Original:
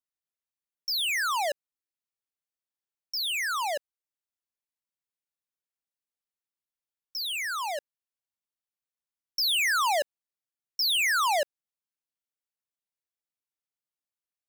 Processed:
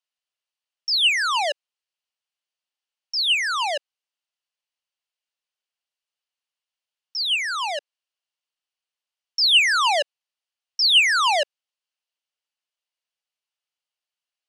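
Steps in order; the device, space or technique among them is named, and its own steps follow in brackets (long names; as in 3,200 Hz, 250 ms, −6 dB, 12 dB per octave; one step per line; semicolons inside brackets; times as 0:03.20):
phone speaker on a table (loudspeaker in its box 490–8,900 Hz, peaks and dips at 2,900 Hz +9 dB, 4,500 Hz +4 dB, 7,400 Hz −4 dB)
level +4.5 dB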